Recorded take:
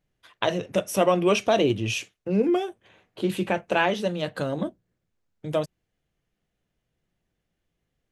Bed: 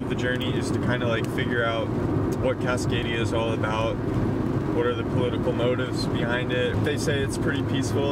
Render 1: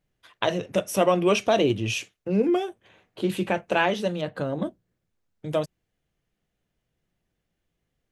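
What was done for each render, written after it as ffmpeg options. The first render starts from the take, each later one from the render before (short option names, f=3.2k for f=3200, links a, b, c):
-filter_complex "[0:a]asettb=1/sr,asplit=3[a][b][c];[a]atrim=end=4.214[d];[b]atrim=start=4.21:end=4.62,asetpts=PTS-STARTPTS,afade=t=in:d=0.004:c=qsin,afade=t=out:st=0.406:d=0.004:c=qsin,highshelf=f=2.9k:g=-11[e];[c]atrim=start=4.616[f];[d][e]acrossfade=d=0.004:c1=hsin:c2=qsin[g];[g][f]acrossfade=d=0.004:c1=qsin:c2=hsin"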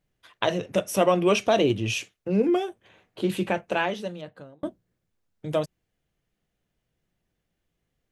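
-filter_complex "[0:a]asplit=2[a][b];[a]atrim=end=4.63,asetpts=PTS-STARTPTS,afade=t=out:st=3.43:d=1.2[c];[b]atrim=start=4.63,asetpts=PTS-STARTPTS,afade=t=in:d=0.004:c=hsin[d];[c][d]concat=n=2:v=0:a=1"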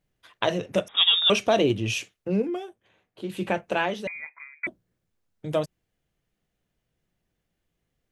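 -filter_complex "[0:a]asettb=1/sr,asplit=3[a][b][c];[a]atrim=end=0.884[d];[b]atrim=start=0.88:end=1.3,asetpts=PTS-STARTPTS,afade=t=in:d=0.004:c=qsin,afade=t=out:st=0.416:d=0.004:c=qsin,lowpass=f=3.3k:t=q:w=0.5098,lowpass=f=3.3k:t=q:w=0.6013,lowpass=f=3.3k:t=q:w=0.9,lowpass=f=3.3k:t=q:w=2.563,afreqshift=-3900[e];[c]atrim=start=1.296[f];[d][e]acrossfade=d=0.004:c1=hsin:c2=qsin[g];[g][f]acrossfade=d=0.004:c1=qsin:c2=hsin,asettb=1/sr,asplit=3[h][i][j];[h]atrim=end=4.074[k];[i]atrim=start=4.07:end=4.67,asetpts=PTS-STARTPTS,afade=t=in:d=0.004:c=qsin,afade=t=out:st=0.596:d=0.004:c=qsin,lowpass=f=2.2k:t=q:w=0.5098,lowpass=f=2.2k:t=q:w=0.6013,lowpass=f=2.2k:t=q:w=0.9,lowpass=f=2.2k:t=q:w=2.563,afreqshift=-2600[l];[j]atrim=start=4.666[m];[k][l]acrossfade=d=0.004:c1=hsin:c2=qsin[n];[n][m]acrossfade=d=0.004:c1=qsin:c2=hsin,asplit=3[o][p][q];[o]atrim=end=2.48,asetpts=PTS-STARTPTS,afade=t=out:st=2.33:d=0.15:silence=0.398107[r];[p]atrim=start=2.48:end=3.33,asetpts=PTS-STARTPTS,volume=-8dB[s];[q]atrim=start=3.33,asetpts=PTS-STARTPTS,afade=t=in:d=0.15:silence=0.398107[t];[r][s][t]concat=n=3:v=0:a=1"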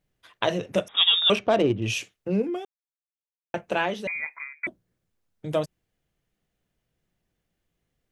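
-filter_complex "[0:a]asettb=1/sr,asplit=3[a][b][c];[a]atrim=end=1.354[d];[b]atrim=start=1.35:end=1.82,asetpts=PTS-STARTPTS,afade=t=in:d=0.004:c=qsin,afade=t=out:st=0.466:d=0.004:c=qsin,adynamicsmooth=sensitivity=1:basefreq=1.7k[e];[c]atrim=start=1.816[f];[d][e]acrossfade=d=0.004:c1=hsin:c2=qsin[g];[g][f]acrossfade=d=0.004:c1=qsin:c2=hsin,asettb=1/sr,asplit=3[h][i][j];[h]atrim=end=4.084[k];[i]atrim=start=4.08:end=4.53,asetpts=PTS-STARTPTS,afade=t=in:d=0.004:c=qsin,afade=t=out:st=0.446:d=0.004:c=qsin,acontrast=62[l];[j]atrim=start=4.526[m];[k][l]acrossfade=d=0.004:c1=hsin:c2=qsin[n];[n][m]acrossfade=d=0.004:c1=qsin:c2=hsin,asplit=3[o][p][q];[o]atrim=end=2.65,asetpts=PTS-STARTPTS,afade=t=out:st=2.646:d=0.004:c=hsin[r];[p]atrim=start=2.65:end=3.54,asetpts=PTS-STARTPTS,volume=0[s];[q]atrim=start=3.54,asetpts=PTS-STARTPTS,afade=t=in:d=0.004:c=hsin[t];[r][s][t]concat=n=3:v=0:a=1"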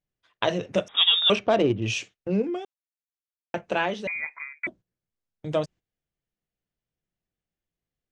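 -af "lowpass=f=7.5k:w=0.5412,lowpass=f=7.5k:w=1.3066,agate=range=-12dB:threshold=-46dB:ratio=16:detection=peak"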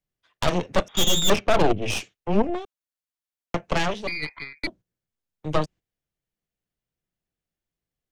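-filter_complex "[0:a]aeval=exprs='0.501*(cos(1*acos(clip(val(0)/0.501,-1,1)))-cos(1*PI/2))+0.141*(cos(8*acos(clip(val(0)/0.501,-1,1)))-cos(8*PI/2))':c=same,acrossover=split=250|700[a][b][c];[c]asoftclip=type=tanh:threshold=-18.5dB[d];[a][b][d]amix=inputs=3:normalize=0"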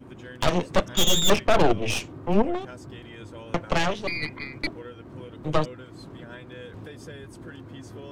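-filter_complex "[1:a]volume=-17dB[a];[0:a][a]amix=inputs=2:normalize=0"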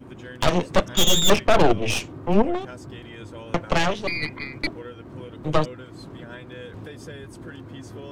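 -af "volume=2.5dB"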